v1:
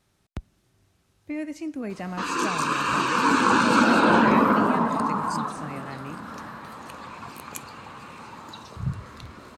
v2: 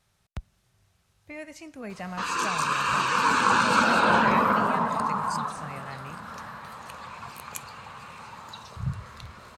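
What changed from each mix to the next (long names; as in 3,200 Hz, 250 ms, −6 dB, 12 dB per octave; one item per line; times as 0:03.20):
master: add parametric band 300 Hz −13.5 dB 0.84 octaves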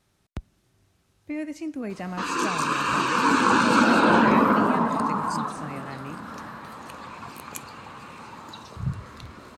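master: add parametric band 300 Hz +13.5 dB 0.84 octaves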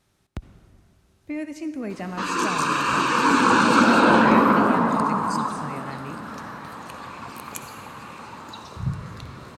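reverb: on, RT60 2.4 s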